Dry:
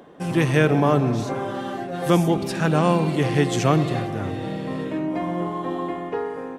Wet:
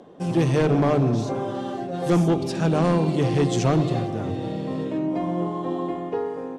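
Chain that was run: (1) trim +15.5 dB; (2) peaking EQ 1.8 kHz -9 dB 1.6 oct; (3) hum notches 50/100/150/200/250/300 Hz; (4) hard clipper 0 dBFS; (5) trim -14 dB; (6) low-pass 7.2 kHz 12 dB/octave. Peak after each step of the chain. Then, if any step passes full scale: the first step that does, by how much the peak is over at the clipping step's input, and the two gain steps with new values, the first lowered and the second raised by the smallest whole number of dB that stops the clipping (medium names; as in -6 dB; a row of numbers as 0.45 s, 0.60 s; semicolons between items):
+11.0 dBFS, +9.0 dBFS, +8.5 dBFS, 0.0 dBFS, -14.0 dBFS, -13.5 dBFS; step 1, 8.5 dB; step 1 +6.5 dB, step 5 -5 dB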